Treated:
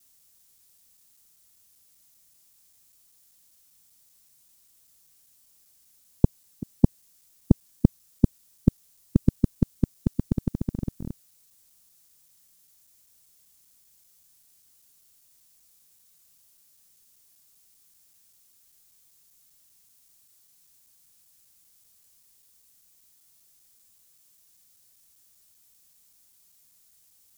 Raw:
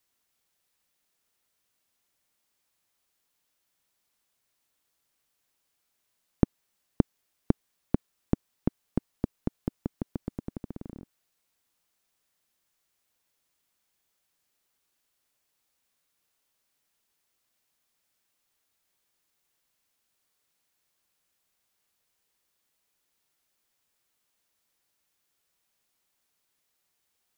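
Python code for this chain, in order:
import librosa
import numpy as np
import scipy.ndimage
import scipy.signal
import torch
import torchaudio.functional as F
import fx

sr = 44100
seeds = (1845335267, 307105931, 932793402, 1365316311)

y = fx.local_reverse(x, sr, ms=195.0)
y = fx.bass_treble(y, sr, bass_db=11, treble_db=15)
y = 10.0 ** (-4.0 / 20.0) * np.tanh(y / 10.0 ** (-4.0 / 20.0))
y = F.gain(torch.from_numpy(y), 3.0).numpy()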